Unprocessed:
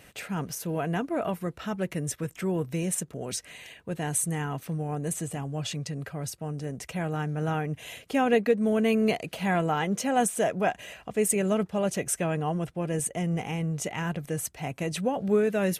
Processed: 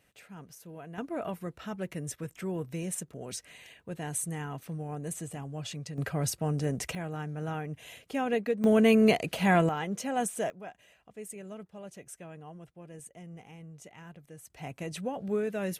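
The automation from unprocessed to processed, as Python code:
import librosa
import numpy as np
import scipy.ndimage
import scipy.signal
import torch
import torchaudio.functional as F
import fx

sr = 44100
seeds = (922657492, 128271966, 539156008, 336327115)

y = fx.gain(x, sr, db=fx.steps((0.0, -15.5), (0.98, -6.0), (5.98, 4.0), (6.95, -6.5), (8.64, 2.5), (9.69, -6.0), (10.5, -18.0), (14.5, -7.0)))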